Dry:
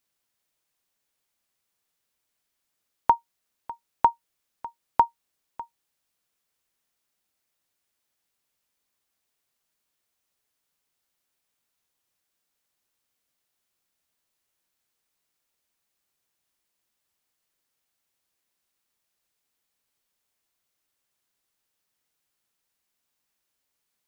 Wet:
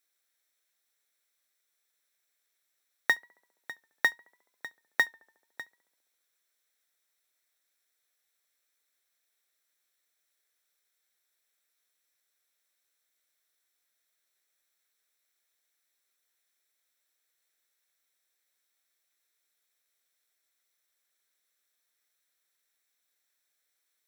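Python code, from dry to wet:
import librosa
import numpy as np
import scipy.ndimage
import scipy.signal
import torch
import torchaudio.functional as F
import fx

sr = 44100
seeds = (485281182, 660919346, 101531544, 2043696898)

y = fx.lower_of_two(x, sr, delay_ms=0.52)
y = scipy.signal.sosfilt(scipy.signal.butter(2, 550.0, 'highpass', fs=sr, output='sos'), y)
y = fx.cheby_harmonics(y, sr, harmonics=(5,), levels_db=(-23,), full_scale_db=-9.0)
y = fx.quant_float(y, sr, bits=2)
y = fx.echo_tape(y, sr, ms=70, feedback_pct=80, wet_db=-22.5, lp_hz=1400.0, drive_db=13.0, wow_cents=29)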